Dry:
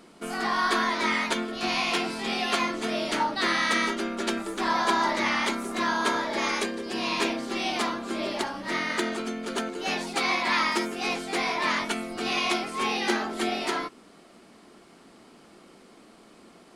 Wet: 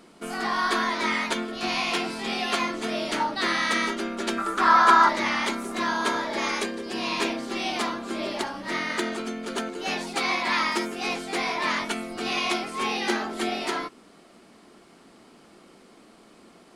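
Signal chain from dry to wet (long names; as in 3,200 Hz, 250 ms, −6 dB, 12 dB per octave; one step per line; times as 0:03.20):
0:04.38–0:05.09: parametric band 1,300 Hz +15 dB 0.69 octaves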